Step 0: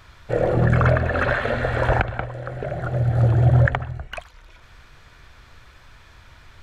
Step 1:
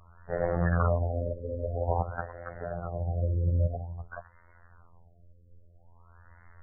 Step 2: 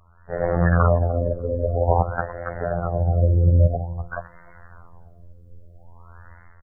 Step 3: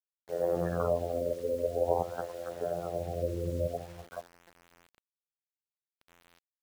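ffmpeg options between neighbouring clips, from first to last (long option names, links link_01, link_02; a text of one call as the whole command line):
ffmpeg -i in.wav -af "equalizer=frequency=310:width=2.1:gain=-8.5,afftfilt=real='hypot(re,im)*cos(PI*b)':imag='0':win_size=2048:overlap=0.75,afftfilt=real='re*lt(b*sr/1024,570*pow(2200/570,0.5+0.5*sin(2*PI*0.5*pts/sr)))':imag='im*lt(b*sr/1024,570*pow(2200/570,0.5+0.5*sin(2*PI*0.5*pts/sr)))':win_size=1024:overlap=0.75,volume=-3dB" out.wav
ffmpeg -i in.wav -filter_complex "[0:a]dynaudnorm=framelen=120:gausssize=7:maxgain=11dB,asplit=2[link_01][link_02];[link_02]adelay=296,lowpass=frequency=1600:poles=1,volume=-24dB,asplit=2[link_03][link_04];[link_04]adelay=296,lowpass=frequency=1600:poles=1,volume=0.43,asplit=2[link_05][link_06];[link_06]adelay=296,lowpass=frequency=1600:poles=1,volume=0.43[link_07];[link_01][link_03][link_05][link_07]amix=inputs=4:normalize=0" out.wav
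ffmpeg -i in.wav -af "bandpass=frequency=430:width_type=q:width=1.5:csg=0,acrusher=bits=7:mix=0:aa=0.000001,volume=-4dB" out.wav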